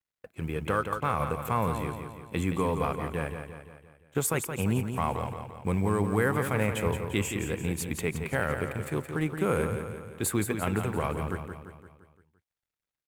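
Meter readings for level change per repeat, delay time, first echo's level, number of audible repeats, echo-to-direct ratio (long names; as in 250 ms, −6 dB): −5.5 dB, 172 ms, −7.5 dB, 5, −6.0 dB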